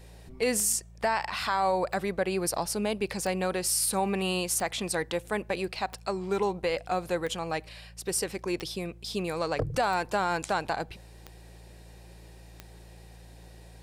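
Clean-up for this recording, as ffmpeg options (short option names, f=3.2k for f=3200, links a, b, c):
-af "adeclick=t=4,bandreject=f=56.7:t=h:w=4,bandreject=f=113.4:t=h:w=4,bandreject=f=170.1:t=h:w=4"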